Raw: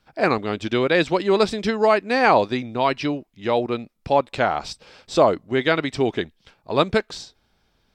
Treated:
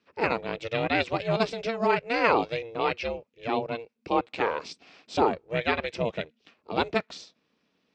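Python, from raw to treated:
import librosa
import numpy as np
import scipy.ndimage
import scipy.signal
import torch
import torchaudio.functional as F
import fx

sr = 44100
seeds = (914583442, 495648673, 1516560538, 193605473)

y = x * np.sin(2.0 * np.pi * 230.0 * np.arange(len(x)) / sr)
y = fx.cabinet(y, sr, low_hz=110.0, low_slope=12, high_hz=7000.0, hz=(120.0, 470.0, 2500.0), db=(-6, 5, 8))
y = y * librosa.db_to_amplitude(-5.0)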